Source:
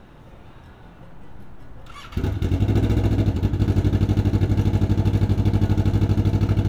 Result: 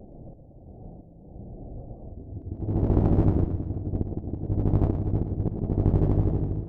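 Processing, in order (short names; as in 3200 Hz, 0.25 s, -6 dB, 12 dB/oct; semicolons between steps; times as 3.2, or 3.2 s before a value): ending faded out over 0.70 s; steep low-pass 740 Hz 72 dB/oct; auto swell 0.483 s; compressor 1.5:1, threshold -25 dBFS, peak gain reduction 4 dB; added harmonics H 3 -18 dB, 4 -12 dB, 5 -22 dB, 7 -35 dB, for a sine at -11.5 dBFS; one-sided clip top -30 dBFS, bottom -13 dBFS; pre-echo 0.156 s -13 dB; warbling echo 0.117 s, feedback 54%, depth 118 cents, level -8 dB; gain +3 dB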